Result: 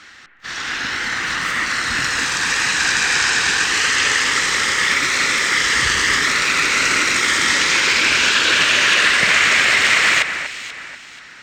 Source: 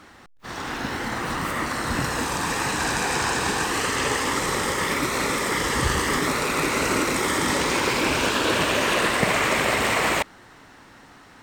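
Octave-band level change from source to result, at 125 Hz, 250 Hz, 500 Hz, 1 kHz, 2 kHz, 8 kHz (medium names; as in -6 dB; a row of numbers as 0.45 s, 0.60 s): -5.0 dB, -5.0 dB, -4.5 dB, +1.5 dB, +10.5 dB, +8.0 dB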